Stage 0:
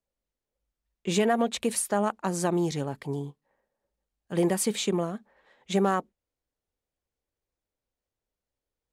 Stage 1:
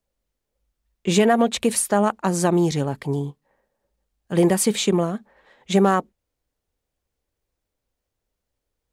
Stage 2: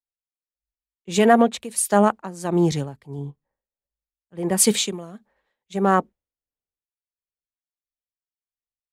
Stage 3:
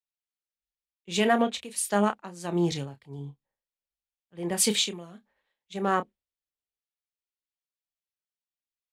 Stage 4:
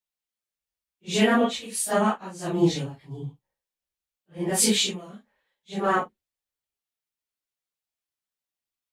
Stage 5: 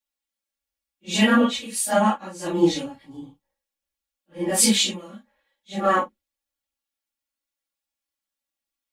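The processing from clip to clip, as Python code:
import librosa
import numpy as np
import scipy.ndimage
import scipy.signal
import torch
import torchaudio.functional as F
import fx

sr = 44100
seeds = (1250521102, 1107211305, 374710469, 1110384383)

y1 = fx.low_shelf(x, sr, hz=130.0, db=4.5)
y1 = F.gain(torch.from_numpy(y1), 6.5).numpy()
y2 = y1 * (1.0 - 0.71 / 2.0 + 0.71 / 2.0 * np.cos(2.0 * np.pi * 1.5 * (np.arange(len(y1)) / sr)))
y2 = fx.band_widen(y2, sr, depth_pct=70)
y3 = fx.peak_eq(y2, sr, hz=3200.0, db=8.0, octaves=1.6)
y3 = fx.doubler(y3, sr, ms=29.0, db=-10)
y3 = F.gain(torch.from_numpy(y3), -8.5).numpy()
y4 = fx.phase_scramble(y3, sr, seeds[0], window_ms=100)
y4 = F.gain(torch.from_numpy(y4), 3.0).numpy()
y5 = y4 + 1.0 * np.pad(y4, (int(3.6 * sr / 1000.0), 0))[:len(y4)]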